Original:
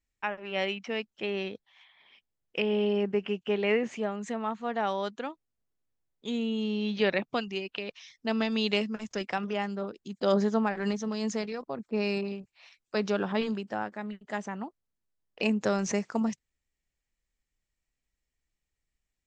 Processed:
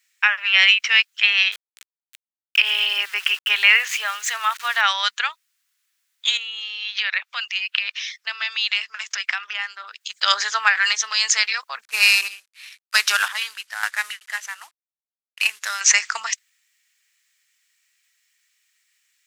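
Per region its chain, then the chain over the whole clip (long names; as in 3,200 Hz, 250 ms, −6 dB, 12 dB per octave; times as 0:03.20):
0:01.52–0:04.81: parametric band 2,000 Hz −3 dB 0.54 octaves + centre clipping without the shift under −49.5 dBFS
0:06.37–0:10.01: high-shelf EQ 5,200 Hz −8 dB + downward compressor 3 to 1, threshold −38 dBFS + high-pass filter 330 Hz
0:11.83–0:15.81: variable-slope delta modulation 64 kbit/s + square-wave tremolo 1 Hz, depth 65%, duty 45%
whole clip: high-pass filter 1,500 Hz 24 dB per octave; boost into a limiter +24 dB; level −1 dB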